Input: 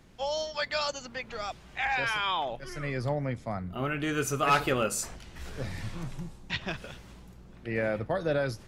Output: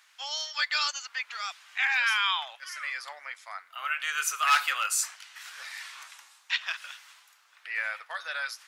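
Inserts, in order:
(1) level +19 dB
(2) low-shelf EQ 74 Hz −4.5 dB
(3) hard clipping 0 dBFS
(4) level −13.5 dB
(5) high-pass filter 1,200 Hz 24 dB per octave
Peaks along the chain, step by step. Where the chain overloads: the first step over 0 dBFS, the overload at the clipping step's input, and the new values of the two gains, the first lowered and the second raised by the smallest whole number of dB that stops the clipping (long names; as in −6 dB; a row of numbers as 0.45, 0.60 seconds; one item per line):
+3.0, +3.5, 0.0, −13.5, −11.0 dBFS
step 1, 3.5 dB
step 1 +15 dB, step 4 −9.5 dB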